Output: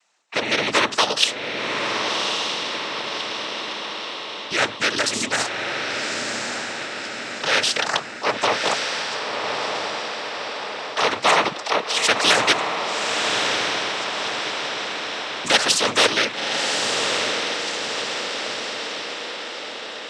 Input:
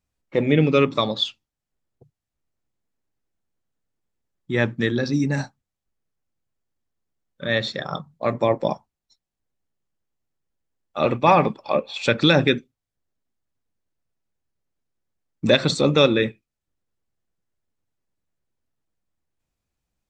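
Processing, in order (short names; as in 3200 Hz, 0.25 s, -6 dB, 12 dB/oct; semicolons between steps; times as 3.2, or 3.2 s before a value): Chebyshev high-pass 830 Hz, order 2; noise vocoder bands 12; on a send: diffused feedback echo 1.135 s, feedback 40%, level -9 dB; on the sum: spectral compressor 2:1; gain +2.5 dB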